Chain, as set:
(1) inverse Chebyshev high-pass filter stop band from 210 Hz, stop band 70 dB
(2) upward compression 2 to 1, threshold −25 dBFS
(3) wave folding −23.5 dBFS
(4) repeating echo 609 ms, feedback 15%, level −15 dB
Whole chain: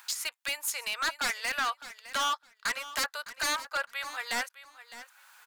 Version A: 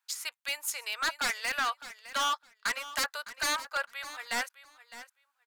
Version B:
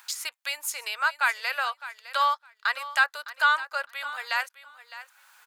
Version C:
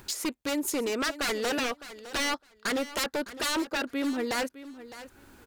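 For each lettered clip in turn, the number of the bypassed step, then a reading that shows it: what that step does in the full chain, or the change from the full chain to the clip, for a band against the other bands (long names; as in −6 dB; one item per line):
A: 2, change in momentary loudness spread −7 LU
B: 3, change in crest factor +7.0 dB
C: 1, 250 Hz band +19.5 dB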